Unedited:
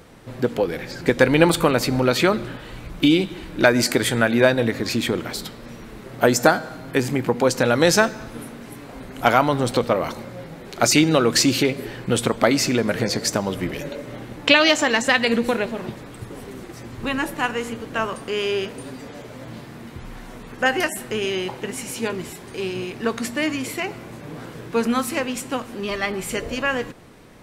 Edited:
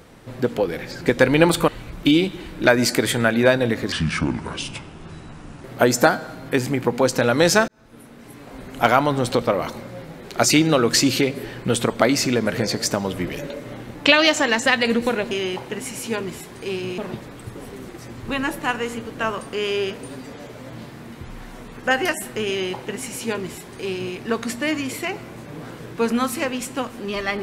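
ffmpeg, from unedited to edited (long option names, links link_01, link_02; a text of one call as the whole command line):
ffmpeg -i in.wav -filter_complex "[0:a]asplit=7[link_01][link_02][link_03][link_04][link_05][link_06][link_07];[link_01]atrim=end=1.682[link_08];[link_02]atrim=start=2.648:end=4.894[link_09];[link_03]atrim=start=4.89:end=6.06,asetpts=PTS-STARTPTS,asetrate=29988,aresample=44100[link_10];[link_04]atrim=start=6.056:end=8.1,asetpts=PTS-STARTPTS,afade=type=out:start_time=2.04:duration=0.004:curve=hsin[link_11];[link_05]atrim=start=8.1:end=15.732,asetpts=PTS-STARTPTS,afade=type=in:duration=0.97[link_12];[link_06]atrim=start=21.228:end=22.902[link_13];[link_07]atrim=start=15.728[link_14];[link_08][link_09]acrossfade=duration=0.004:curve1=hsin:curve2=hsin[link_15];[link_15][link_10]acrossfade=duration=0.004:curve1=hsin:curve2=hsin[link_16];[link_11][link_12]concat=n=2:v=0:a=1[link_17];[link_16][link_17]acrossfade=duration=0.004:curve1=hsin:curve2=hsin[link_18];[link_18][link_13]acrossfade=duration=0.004:curve1=hsin:curve2=hsin[link_19];[link_19][link_14]acrossfade=duration=0.004:curve1=hsin:curve2=hsin" out.wav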